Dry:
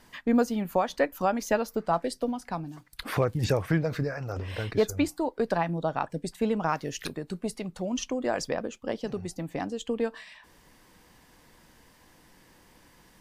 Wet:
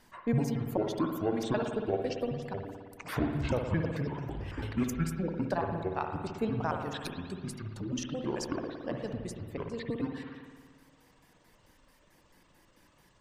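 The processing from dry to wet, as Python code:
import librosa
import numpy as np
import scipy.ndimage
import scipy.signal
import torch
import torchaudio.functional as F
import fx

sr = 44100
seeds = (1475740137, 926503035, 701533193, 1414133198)

y = fx.pitch_trill(x, sr, semitones=-9.5, every_ms=110)
y = fx.dereverb_blind(y, sr, rt60_s=0.87)
y = fx.rev_spring(y, sr, rt60_s=1.7, pass_ms=(56,), chirp_ms=60, drr_db=3.0)
y = F.gain(torch.from_numpy(y), -4.5).numpy()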